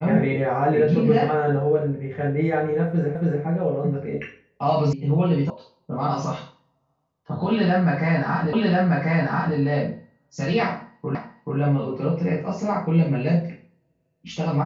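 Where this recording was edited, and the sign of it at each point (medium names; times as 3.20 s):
3.15 s: repeat of the last 0.28 s
4.93 s: sound stops dead
5.50 s: sound stops dead
8.53 s: repeat of the last 1.04 s
11.15 s: repeat of the last 0.43 s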